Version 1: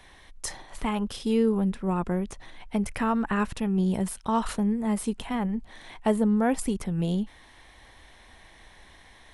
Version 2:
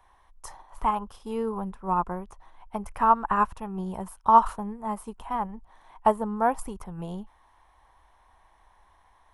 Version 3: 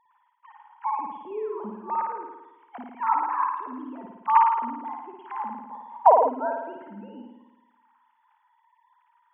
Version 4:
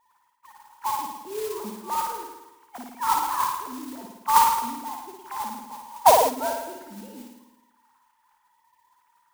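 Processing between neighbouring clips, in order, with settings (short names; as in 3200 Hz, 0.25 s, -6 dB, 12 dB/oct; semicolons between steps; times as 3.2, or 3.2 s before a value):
graphic EQ 125/250/500/1000/2000/4000/8000 Hz -7/-9/-5/+11/-9/-10/-7 dB; upward expander 1.5:1, over -45 dBFS; gain +6.5 dB
sine-wave speech; flutter echo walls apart 9.4 m, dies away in 1 s; spectral gain 5.71–6.29, 440–1200 Hz +11 dB; gain -4.5 dB
modulation noise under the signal 10 dB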